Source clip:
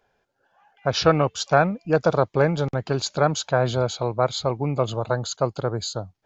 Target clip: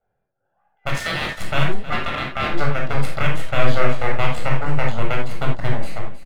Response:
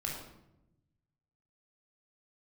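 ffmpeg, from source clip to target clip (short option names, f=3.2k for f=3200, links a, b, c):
-filter_complex "[0:a]asettb=1/sr,asplit=3[a][b][c];[a]atrim=end=5.234[d];[b]atrim=start=5.23:end=5.75,asetpts=PTS-STARTPTS,afade=t=in:d=0.004:c=qsin,afade=t=out:st=0.516:d=0.004:c=qsin,highpass=210[e];[c]atrim=start=5.746[f];[d][e]acrossfade=d=0.004:c1=hsin:c2=qsin[g];[g][f]acrossfade=d=0.004:c1=qsin:c2=hsin,alimiter=limit=-12.5dB:level=0:latency=1,acontrast=88,aeval=exprs='0.473*(cos(1*acos(clip(val(0)/0.473,-1,1)))-cos(1*PI/2))+0.211*(cos(3*acos(clip(val(0)/0.473,-1,1)))-cos(3*PI/2))+0.133*(cos(4*acos(clip(val(0)/0.473,-1,1)))-cos(4*PI/2))':c=same,asettb=1/sr,asplit=3[h][i][j];[h]atrim=end=0.894[k];[i]atrim=start=0.89:end=1.37,asetpts=PTS-STARTPTS,afade=t=in:d=0.004:c=qsin,afade=t=out:st=0.476:d=0.004:c=qsin,aeval=exprs='val(0)*sin(2*PI*1800*n/s)':c=same[l];[j]atrim=start=1.366[m];[k][l]acrossfade=d=0.004:c1=hsin:c2=qsin[n];[n][m]acrossfade=d=0.004:c1=qsin:c2=hsin,adynamicsmooth=sensitivity=7:basefreq=1.6k,asettb=1/sr,asplit=3[o][p][q];[o]atrim=end=1.904[r];[p]atrim=start=1.9:end=2.49,asetpts=PTS-STARTPTS,afade=t=in:d=0.004:c=qsin,afade=t=out:st=0.586:d=0.004:c=qsin,aeval=exprs='val(0)*sin(2*PI*1200*n/s)':c=same[s];[q]atrim=start=2.486[t];[r][s]acrossfade=d=0.004:c1=hsin:c2=qsin[u];[u][t]acrossfade=d=0.004:c1=qsin:c2=hsin,aecho=1:1:316|632|948|1264:0.178|0.0782|0.0344|0.0151[v];[1:a]atrim=start_sample=2205,atrim=end_sample=4410[w];[v][w]afir=irnorm=-1:irlink=0,adynamicequalizer=threshold=0.0112:dfrequency=5300:dqfactor=0.7:tfrequency=5300:tqfactor=0.7:attack=5:release=100:ratio=0.375:range=2:mode=cutabove:tftype=highshelf,volume=-4.5dB"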